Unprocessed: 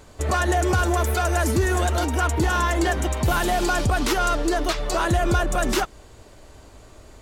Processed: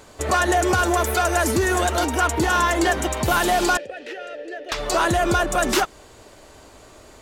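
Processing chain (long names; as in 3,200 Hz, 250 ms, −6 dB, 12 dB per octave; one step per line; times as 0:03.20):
0:03.77–0:04.72: formant filter e
low-shelf EQ 150 Hz −11.5 dB
level +4 dB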